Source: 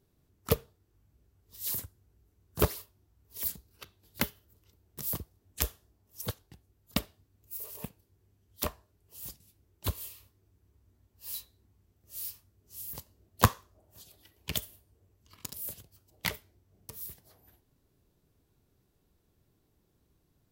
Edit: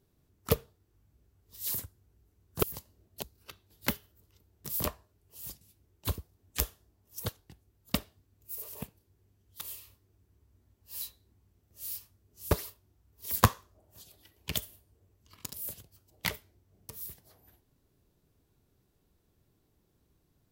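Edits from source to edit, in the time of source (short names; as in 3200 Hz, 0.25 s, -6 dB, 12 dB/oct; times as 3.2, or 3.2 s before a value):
2.63–3.55 swap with 12.84–13.43
8.63–9.94 move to 5.17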